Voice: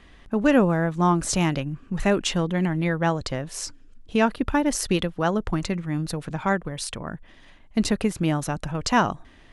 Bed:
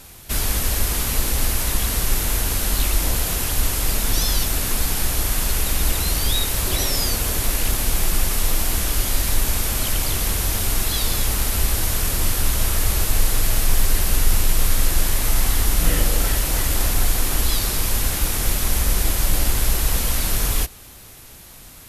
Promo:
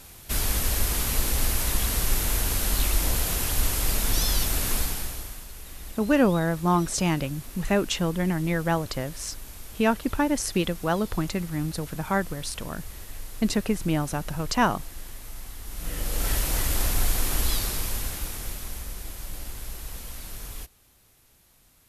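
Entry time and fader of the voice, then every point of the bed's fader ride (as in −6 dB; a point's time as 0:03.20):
5.65 s, −2.0 dB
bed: 0:04.77 −4 dB
0:05.47 −21 dB
0:15.61 −21 dB
0:16.32 −5 dB
0:17.51 −5 dB
0:18.95 −17.5 dB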